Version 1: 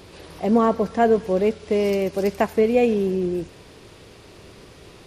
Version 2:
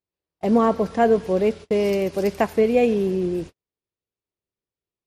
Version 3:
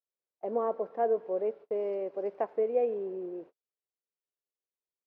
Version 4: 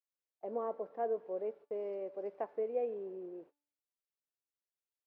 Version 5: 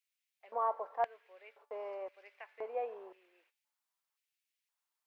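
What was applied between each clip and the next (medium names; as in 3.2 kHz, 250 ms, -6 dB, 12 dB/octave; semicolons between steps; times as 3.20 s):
gate -33 dBFS, range -49 dB
ladder band-pass 630 Hz, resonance 30%
feedback comb 290 Hz, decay 0.63 s, mix 50%; trim -1.5 dB
LFO high-pass square 0.96 Hz 950–2300 Hz; trim +5 dB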